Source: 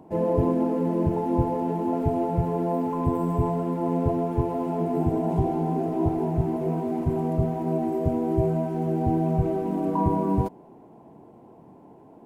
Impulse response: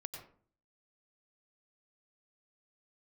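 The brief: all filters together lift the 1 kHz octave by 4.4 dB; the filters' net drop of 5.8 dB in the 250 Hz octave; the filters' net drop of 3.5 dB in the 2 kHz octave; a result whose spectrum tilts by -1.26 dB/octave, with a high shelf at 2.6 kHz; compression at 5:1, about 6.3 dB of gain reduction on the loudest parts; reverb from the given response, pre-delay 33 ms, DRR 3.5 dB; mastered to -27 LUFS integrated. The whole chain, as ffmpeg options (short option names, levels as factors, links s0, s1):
-filter_complex "[0:a]equalizer=f=250:t=o:g=-9,equalizer=f=1000:t=o:g=8,equalizer=f=2000:t=o:g=-4,highshelf=f=2600:g=-8.5,acompressor=threshold=0.0501:ratio=5,asplit=2[s0][s1];[1:a]atrim=start_sample=2205,adelay=33[s2];[s1][s2]afir=irnorm=-1:irlink=0,volume=0.891[s3];[s0][s3]amix=inputs=2:normalize=0,volume=1.33"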